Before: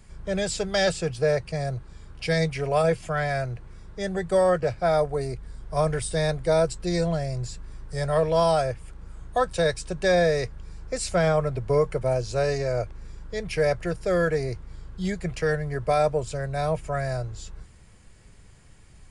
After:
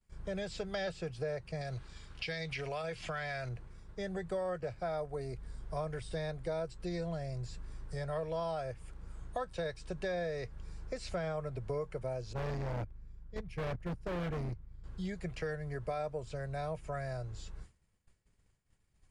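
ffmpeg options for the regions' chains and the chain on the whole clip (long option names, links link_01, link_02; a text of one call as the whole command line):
ffmpeg -i in.wav -filter_complex "[0:a]asettb=1/sr,asplit=3[link_01][link_02][link_03];[link_01]atrim=end=1.614[link_04];[link_02]atrim=start=1.61:end=3.49,asetpts=PTS-STARTPTS,afade=type=in:duration=0.004:curve=qsin,afade=type=out:start_time=1.876:duration=0.004:curve=qsin,equalizer=frequency=3700:width_type=o:width=2.7:gain=11.5,acompressor=threshold=-26dB:ratio=3:attack=3.2:release=140:knee=1:detection=peak[link_05];[link_03]atrim=start=3.486[link_06];[link_04][link_05]acrossfade=duration=0.004:curve1=hsin:curve2=qsin[link_07];[link_07][link_06]acrossfade=duration=0.004:curve1=qsin:curve2=hsin,asettb=1/sr,asplit=3[link_08][link_09][link_10];[link_08]atrim=end=12.334[link_11];[link_09]atrim=start=12.33:end=14.84,asetpts=PTS-STARTPTS,afade=type=in:duration=0.004:curve=qsin,afade=type=out:start_time=2.506:duration=0.004:curve=qsin,agate=range=-14dB:threshold=-29dB:ratio=16:release=100:detection=peak,bass=frequency=250:gain=11,treble=frequency=4000:gain=-6,volume=25.5dB,asoftclip=hard,volume=-25.5dB[link_12];[link_10]atrim=start=14.836[link_13];[link_11][link_12]acrossfade=duration=0.004:curve1=hsin:curve2=qsin[link_14];[link_14][link_13]acrossfade=duration=0.004:curve1=qsin:curve2=hsin,acrossover=split=4800[link_15][link_16];[link_16]acompressor=threshold=-52dB:ratio=4:attack=1:release=60[link_17];[link_15][link_17]amix=inputs=2:normalize=0,agate=range=-33dB:threshold=-38dB:ratio=3:detection=peak,acompressor=threshold=-32dB:ratio=3,volume=-5dB" out.wav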